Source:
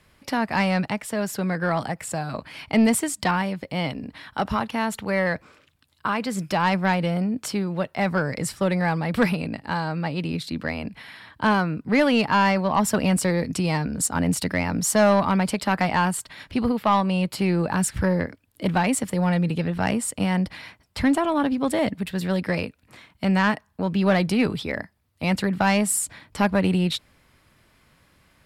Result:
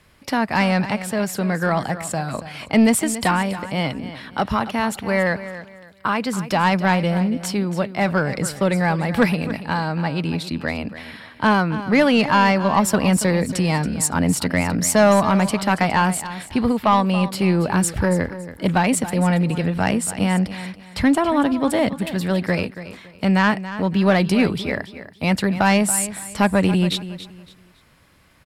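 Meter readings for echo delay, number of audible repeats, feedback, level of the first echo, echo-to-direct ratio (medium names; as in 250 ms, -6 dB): 280 ms, 2, 28%, -13.5 dB, -13.0 dB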